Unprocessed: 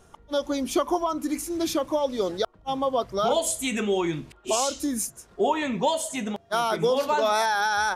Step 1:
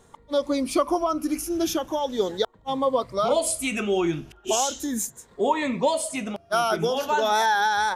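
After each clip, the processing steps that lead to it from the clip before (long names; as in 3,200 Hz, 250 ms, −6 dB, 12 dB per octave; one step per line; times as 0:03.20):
rippled gain that drifts along the octave scale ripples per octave 1, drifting +0.38 Hz, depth 8 dB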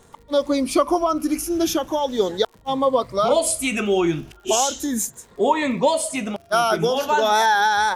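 surface crackle 81 per second −43 dBFS
level +4 dB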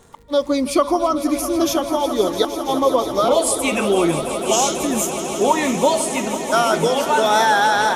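echo that builds up and dies away 165 ms, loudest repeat 5, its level −14 dB
level +1.5 dB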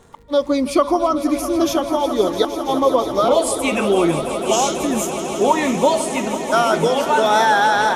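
high-shelf EQ 4,800 Hz −6 dB
level +1 dB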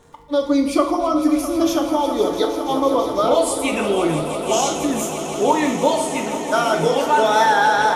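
feedback delay network reverb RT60 0.7 s, low-frequency decay 0.8×, high-frequency decay 0.95×, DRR 3 dB
level −3 dB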